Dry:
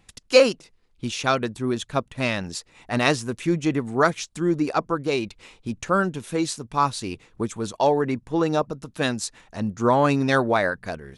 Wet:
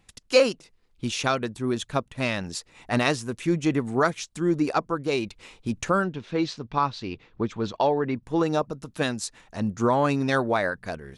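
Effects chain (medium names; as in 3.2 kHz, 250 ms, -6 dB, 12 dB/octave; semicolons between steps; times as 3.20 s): recorder AGC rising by 5.4 dB/s; 6.04–8.23 s: low-pass 4.7 kHz 24 dB/octave; trim -3.5 dB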